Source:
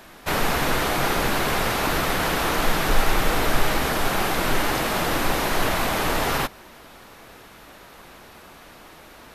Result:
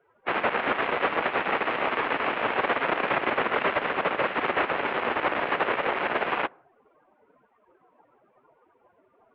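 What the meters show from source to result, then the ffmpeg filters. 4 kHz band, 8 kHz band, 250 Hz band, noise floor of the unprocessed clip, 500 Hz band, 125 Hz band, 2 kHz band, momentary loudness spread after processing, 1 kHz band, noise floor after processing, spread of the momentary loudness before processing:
−9.0 dB, below −40 dB, −7.0 dB, −47 dBFS, −1.5 dB, −16.0 dB, −1.5 dB, 2 LU, −2.0 dB, −66 dBFS, 1 LU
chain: -af "aeval=exprs='0.531*(cos(1*acos(clip(val(0)/0.531,-1,1)))-cos(1*PI/2))+0.188*(cos(6*acos(clip(val(0)/0.531,-1,1)))-cos(6*PI/2))':channel_layout=same,afftdn=noise_reduction=23:noise_floor=-39,highpass=frequency=550:width_type=q:width=0.5412,highpass=frequency=550:width_type=q:width=1.307,lowpass=frequency=3000:width_type=q:width=0.5176,lowpass=frequency=3000:width_type=q:width=0.7071,lowpass=frequency=3000:width_type=q:width=1.932,afreqshift=-230,volume=-4dB"

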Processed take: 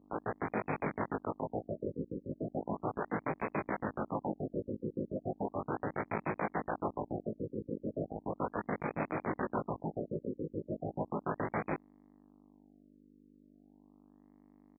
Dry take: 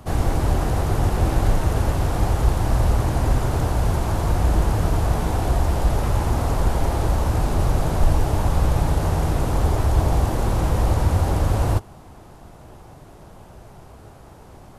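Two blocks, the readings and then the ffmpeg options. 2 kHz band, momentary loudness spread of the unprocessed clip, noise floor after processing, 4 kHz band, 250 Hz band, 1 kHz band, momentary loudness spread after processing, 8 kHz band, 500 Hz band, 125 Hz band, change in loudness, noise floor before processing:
−9.0 dB, 2 LU, −62 dBFS, below −40 dB, −10.5 dB, −12.0 dB, 4 LU, below −40 dB, −10.0 dB, −24.0 dB, −16.5 dB, −45 dBFS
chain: -filter_complex "[0:a]equalizer=frequency=2500:width=0.6:gain=-7,acompressor=threshold=-22dB:ratio=4,aeval=exprs='(tanh(17.8*val(0)+0.15)-tanh(0.15))/17.8':channel_layout=same,tremolo=f=7:d=0.86,acrusher=bits=4:mix=0:aa=0.000001,aeval=exprs='val(0)+0.00355*(sin(2*PI*50*n/s)+sin(2*PI*2*50*n/s)/2+sin(2*PI*3*50*n/s)/3+sin(2*PI*4*50*n/s)/4+sin(2*PI*5*50*n/s)/5)':channel_layout=same,aeval=exprs='abs(val(0))':channel_layout=same,highpass=210,lowpass=5500,asplit=2[link_01][link_02];[link_02]adelay=19,volume=-4dB[link_03];[link_01][link_03]amix=inputs=2:normalize=0,afftfilt=real='re*lt(b*sr/1024,540*pow(2600/540,0.5+0.5*sin(2*PI*0.36*pts/sr)))':imag='im*lt(b*sr/1024,540*pow(2600/540,0.5+0.5*sin(2*PI*0.36*pts/sr)))':win_size=1024:overlap=0.75"

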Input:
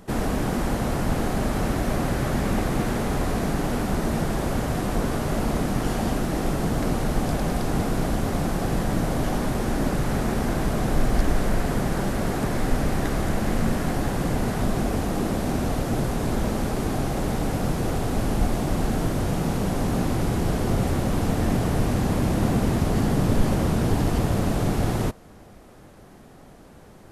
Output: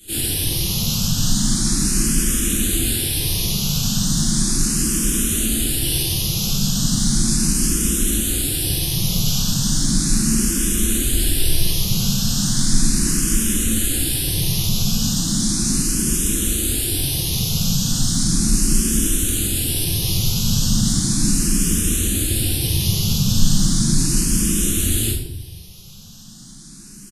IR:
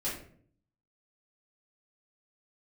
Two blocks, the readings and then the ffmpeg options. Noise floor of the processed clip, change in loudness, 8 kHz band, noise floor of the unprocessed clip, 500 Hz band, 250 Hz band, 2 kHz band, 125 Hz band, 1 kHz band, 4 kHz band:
−39 dBFS, +6.5 dB, +20.0 dB, −47 dBFS, −7.5 dB, +2.5 dB, +0.5 dB, +3.0 dB, −11.0 dB, +16.0 dB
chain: -filter_complex "[0:a]firequalizer=gain_entry='entry(260,0);entry(610,-17);entry(1600,0)':delay=0.05:min_phase=1,acrossover=split=100[link_01][link_02];[link_02]alimiter=limit=-19.5dB:level=0:latency=1:release=12[link_03];[link_01][link_03]amix=inputs=2:normalize=0,aexciter=amount=8.7:drive=5.2:freq=2900,asplit=2[link_04][link_05];[link_05]asoftclip=type=tanh:threshold=-18.5dB,volume=-9.5dB[link_06];[link_04][link_06]amix=inputs=2:normalize=0[link_07];[1:a]atrim=start_sample=2205,asetrate=26019,aresample=44100[link_08];[link_07][link_08]afir=irnorm=-1:irlink=0,asplit=2[link_09][link_10];[link_10]afreqshift=0.36[link_11];[link_09][link_11]amix=inputs=2:normalize=1,volume=-7dB"

